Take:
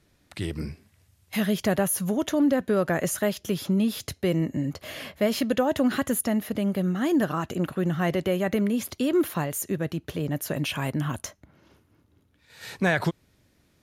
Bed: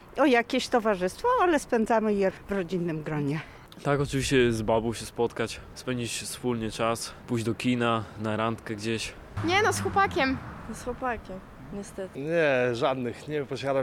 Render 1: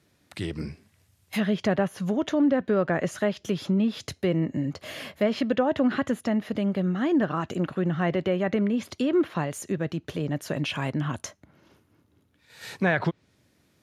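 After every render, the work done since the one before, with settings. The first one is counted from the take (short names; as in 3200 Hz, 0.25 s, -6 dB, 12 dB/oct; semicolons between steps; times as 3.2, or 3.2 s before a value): treble ducked by the level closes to 2900 Hz, closed at -20.5 dBFS; HPF 89 Hz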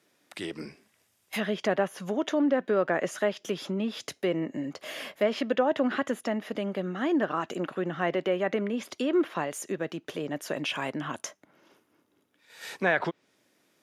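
HPF 310 Hz 12 dB/oct; notch 4200 Hz, Q 14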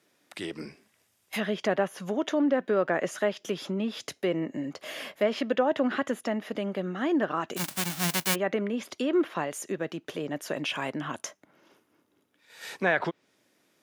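7.56–8.34 spectral whitening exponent 0.1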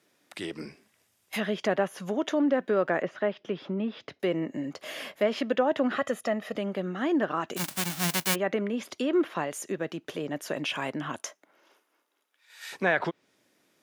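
3.02–4.2 air absorption 310 m; 5.93–6.57 comb 1.6 ms, depth 55%; 11.18–12.71 HPF 300 Hz -> 1200 Hz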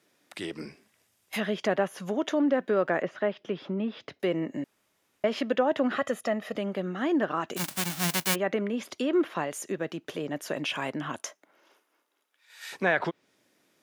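4.64–5.24 room tone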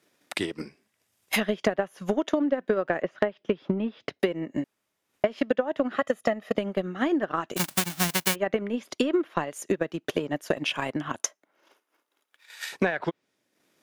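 transient shaper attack +12 dB, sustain -7 dB; compressor 6:1, threshold -20 dBFS, peak gain reduction 11 dB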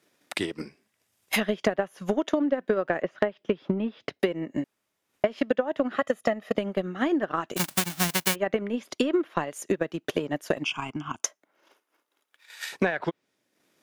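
10.64–11.23 fixed phaser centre 2700 Hz, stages 8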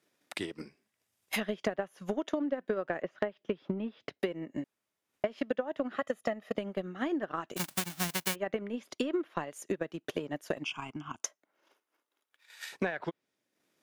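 gain -7.5 dB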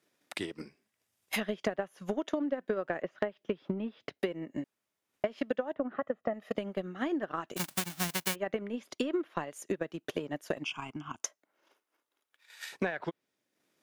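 5.73–6.34 LPF 1400 Hz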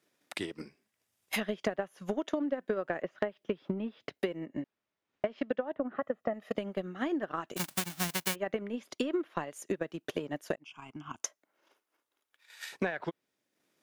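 4.46–5.96 air absorption 140 m; 10.56–11.19 fade in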